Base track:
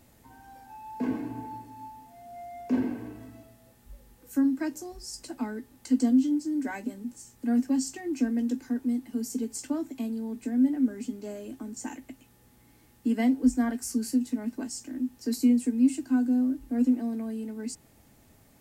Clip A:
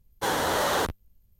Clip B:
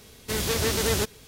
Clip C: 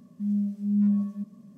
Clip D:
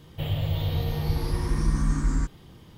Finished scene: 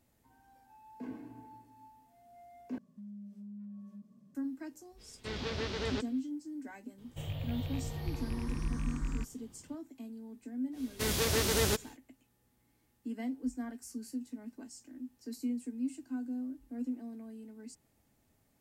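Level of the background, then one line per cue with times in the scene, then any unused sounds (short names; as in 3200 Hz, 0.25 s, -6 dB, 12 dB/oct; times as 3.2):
base track -13.5 dB
2.78 replace with C -11.5 dB + compressor, threshold -34 dBFS
4.96 add B -10.5 dB, fades 0.05 s + LPF 4700 Hz 24 dB/oct
6.98 add D -11.5 dB + rattling part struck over -21 dBFS, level -26 dBFS
10.71 add B -4.5 dB, fades 0.10 s
not used: A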